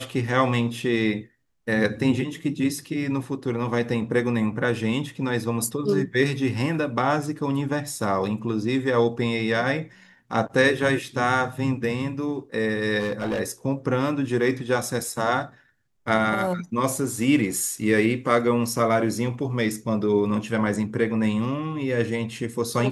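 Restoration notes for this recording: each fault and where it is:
0:12.99–0:13.41: clipping −22 dBFS

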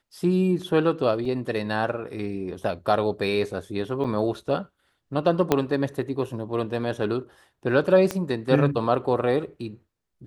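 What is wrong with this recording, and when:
0:01.25: drop-out 3.5 ms
0:02.64: drop-out 3.1 ms
0:04.04–0:04.05: drop-out 5.4 ms
0:05.52: click −5 dBFS
0:08.11: click −13 dBFS

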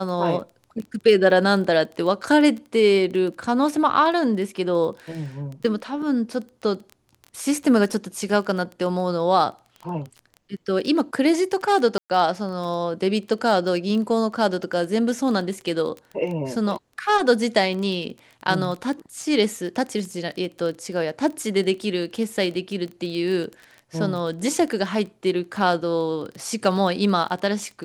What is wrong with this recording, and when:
surface crackle 15 per second −29 dBFS
0:11.98–0:12.10: drop-out 118 ms

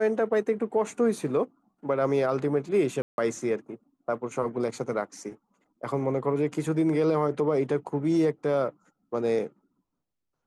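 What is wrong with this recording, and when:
0:03.02–0:03.18: drop-out 161 ms

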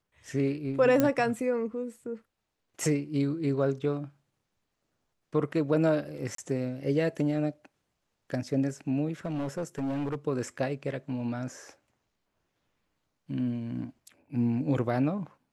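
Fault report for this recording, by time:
0:01.00: click −11 dBFS
0:06.35–0:06.38: drop-out 33 ms
0:09.25–0:10.16: clipping −28 dBFS

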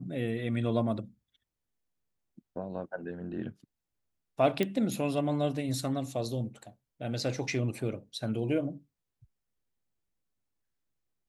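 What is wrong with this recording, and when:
0:04.63: click −16 dBFS

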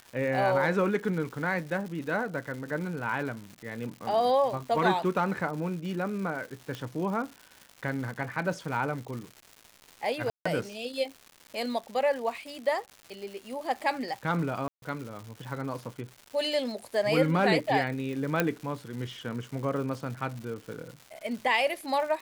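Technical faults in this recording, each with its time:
surface crackle 310 per second −38 dBFS
0:06.75: click −21 dBFS
0:10.30–0:10.46: drop-out 155 ms
0:14.68–0:14.82: drop-out 142 ms
0:18.40: click −10 dBFS

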